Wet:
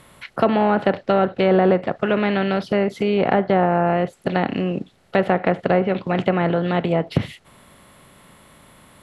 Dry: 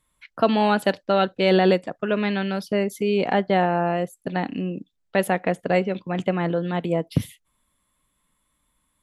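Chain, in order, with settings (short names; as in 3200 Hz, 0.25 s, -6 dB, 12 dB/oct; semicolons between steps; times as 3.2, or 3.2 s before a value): per-bin compression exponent 0.6; treble ducked by the level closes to 1500 Hz, closed at -12 dBFS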